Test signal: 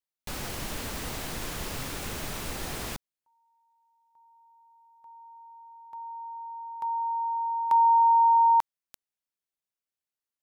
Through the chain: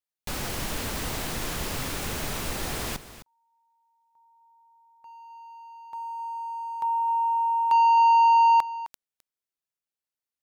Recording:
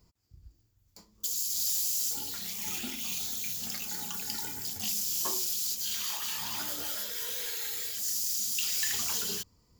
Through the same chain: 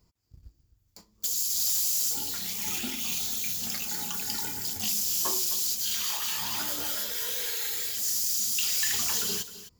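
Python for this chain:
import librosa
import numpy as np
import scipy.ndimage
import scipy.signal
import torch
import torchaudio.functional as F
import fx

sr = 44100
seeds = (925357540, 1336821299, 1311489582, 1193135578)

y = fx.leveller(x, sr, passes=1)
y = y + 10.0 ** (-14.5 / 20.0) * np.pad(y, (int(260 * sr / 1000.0), 0))[:len(y)]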